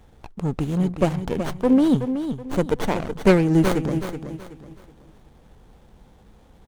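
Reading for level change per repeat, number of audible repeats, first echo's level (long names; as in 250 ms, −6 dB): −10.0 dB, 3, −9.0 dB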